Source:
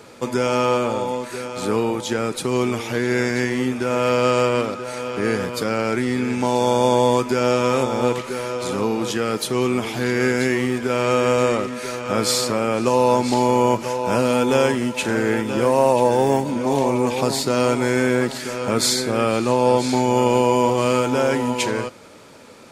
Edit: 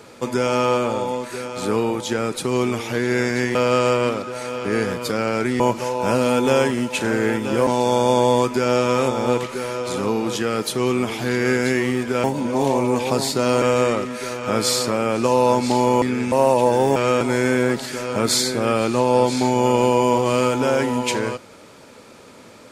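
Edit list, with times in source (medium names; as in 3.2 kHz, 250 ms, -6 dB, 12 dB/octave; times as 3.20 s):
3.55–4.07 s: delete
6.12–6.42 s: swap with 13.64–15.71 s
10.99–11.24 s: swap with 16.35–17.73 s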